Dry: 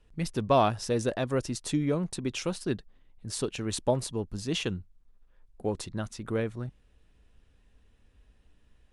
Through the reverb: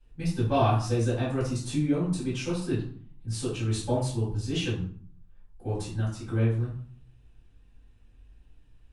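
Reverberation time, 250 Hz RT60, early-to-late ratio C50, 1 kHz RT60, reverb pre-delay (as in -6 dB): 0.50 s, 0.70 s, 4.5 dB, 0.50 s, 3 ms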